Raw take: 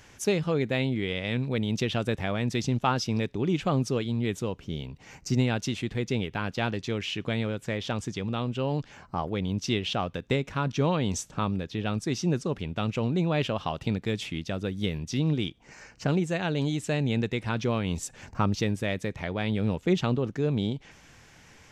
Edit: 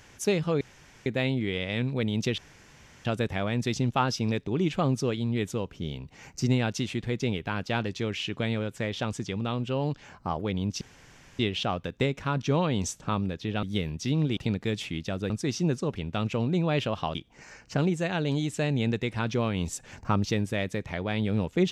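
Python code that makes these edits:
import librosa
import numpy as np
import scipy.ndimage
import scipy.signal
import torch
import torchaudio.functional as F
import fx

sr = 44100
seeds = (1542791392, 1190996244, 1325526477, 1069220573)

y = fx.edit(x, sr, fx.insert_room_tone(at_s=0.61, length_s=0.45),
    fx.insert_room_tone(at_s=1.93, length_s=0.67),
    fx.insert_room_tone(at_s=9.69, length_s=0.58),
    fx.swap(start_s=11.93, length_s=1.85, other_s=14.71, other_length_s=0.74), tone=tone)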